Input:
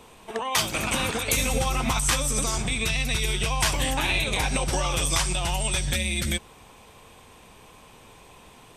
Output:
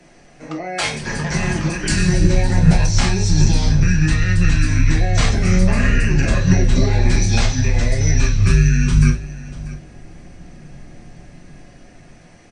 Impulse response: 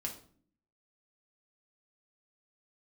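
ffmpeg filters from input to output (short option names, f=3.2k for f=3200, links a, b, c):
-filter_complex "[0:a]bandreject=f=50:t=h:w=6,bandreject=f=100:t=h:w=6,bandreject=f=150:t=h:w=6,acrossover=split=340|820|2600[a][b][c][d];[a]dynaudnorm=f=310:g=7:m=14dB[e];[e][b][c][d]amix=inputs=4:normalize=0,asetrate=30870,aresample=44100,aecho=1:1:640:0.133[f];[1:a]atrim=start_sample=2205,atrim=end_sample=3087[g];[f][g]afir=irnorm=-1:irlink=0,volume=1.5dB"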